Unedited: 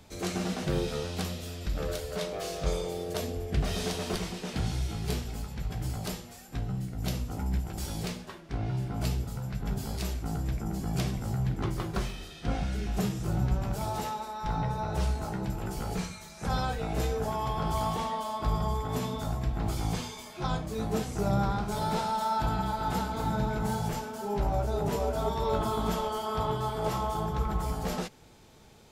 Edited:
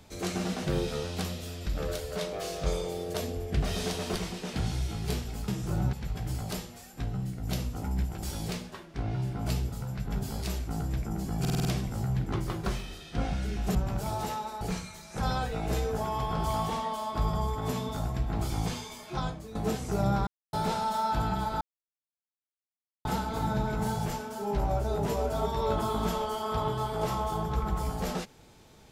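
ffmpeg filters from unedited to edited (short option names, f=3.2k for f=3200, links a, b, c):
-filter_complex "[0:a]asplit=14[a][b][c][d][e][f][g][h][i][j][k][l][m][n];[a]atrim=end=5.482[o];[b]atrim=start=13.048:end=13.502[p];[c]atrim=start=5.478:end=11.002[q];[d]atrim=start=10.948:end=11.002[r];[e]atrim=start=10.948:end=11.002[s];[f]atrim=start=10.948:end=11.002[t];[g]atrim=start=10.948:end=11.002[u];[h]atrim=start=10.948:end=13.052[v];[i]atrim=start=13.498:end=14.362[w];[j]atrim=start=15.878:end=20.82,asetpts=PTS-STARTPTS,afade=t=out:st=4.532:d=0.41:silence=0.199526[x];[k]atrim=start=20.82:end=21.54,asetpts=PTS-STARTPTS,afade=t=in:d=0.004:c=hsin:silence=0.199526,afade=t=out:st=0.716:d=0.004:c=hsin[y];[l]atrim=start=21.54:end=21.8,asetpts=PTS-STARTPTS,volume=0[z];[m]atrim=start=21.8:end=22.88,asetpts=PTS-STARTPTS,afade=t=in:d=0.004:c=hsin,afade=t=out:st=1.076:d=0.004:c=hsin,apad=pad_dur=1.44[aa];[n]atrim=start=22.88,asetpts=PTS-STARTPTS,afade=t=in:d=0.004:c=hsin[ab];[o][p]acrossfade=d=0.004:c1=hsin:c2=hsin[ac];[ac][q]acrossfade=d=0.004:c1=hsin:c2=hsin[ad];[ad][r]acrossfade=d=0.004:c1=hsin:c2=hsin[ae];[ae][s]acrossfade=d=0.004:c1=hsin:c2=hsin[af];[af][t]acrossfade=d=0.004:c1=hsin:c2=hsin[ag];[ag][u]acrossfade=d=0.004:c1=hsin:c2=hsin[ah];[ah][v]acrossfade=d=0.004:c1=hsin:c2=hsin[ai];[ai][w]acrossfade=d=0.004:c1=hsin:c2=hsin[aj];[x][y][z][aa][ab]concat=n=5:v=0:a=1[ak];[aj][ak]acrossfade=d=0.004:c1=hsin:c2=hsin"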